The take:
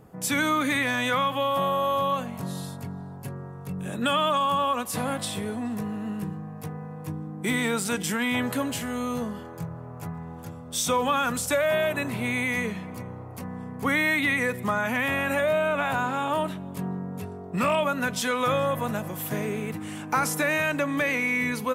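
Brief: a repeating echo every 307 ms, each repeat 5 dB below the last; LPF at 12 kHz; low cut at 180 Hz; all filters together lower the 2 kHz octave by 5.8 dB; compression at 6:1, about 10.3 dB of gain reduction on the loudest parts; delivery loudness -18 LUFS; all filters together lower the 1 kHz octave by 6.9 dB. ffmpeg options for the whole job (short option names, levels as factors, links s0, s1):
-af "highpass=180,lowpass=12000,equalizer=f=1000:t=o:g=-7,equalizer=f=2000:t=o:g=-5,acompressor=threshold=0.0178:ratio=6,aecho=1:1:307|614|921|1228|1535|1842|2149:0.562|0.315|0.176|0.0988|0.0553|0.031|0.0173,volume=8.41"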